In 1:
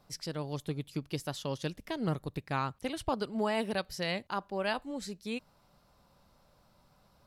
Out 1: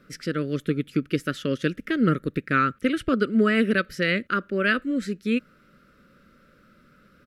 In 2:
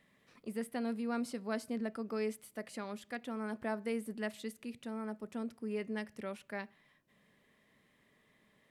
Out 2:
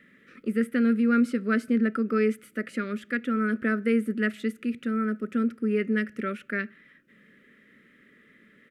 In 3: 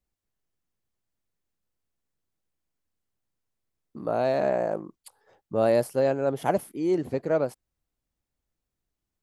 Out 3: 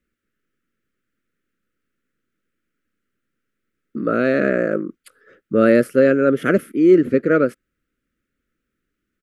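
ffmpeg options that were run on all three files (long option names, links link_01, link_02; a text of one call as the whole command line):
ffmpeg -i in.wav -af "firequalizer=gain_entry='entry(110,0);entry(230,12);entry(530,6);entry(850,-26);entry(1300,14);entry(4300,-3)':delay=0.05:min_phase=1,volume=3.5dB" out.wav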